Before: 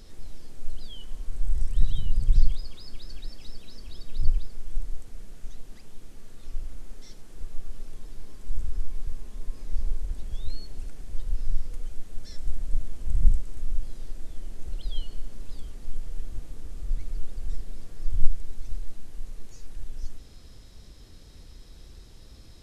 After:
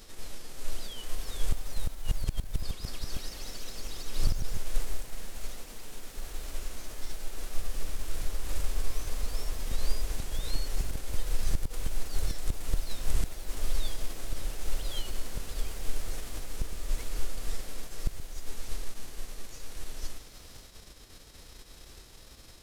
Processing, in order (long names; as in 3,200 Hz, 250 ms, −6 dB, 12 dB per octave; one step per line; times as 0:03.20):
spectral envelope flattened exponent 0.6
gate with flip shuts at −10 dBFS, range −37 dB
delay with pitch and tempo change per echo 516 ms, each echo +2 semitones, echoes 3
level −4.5 dB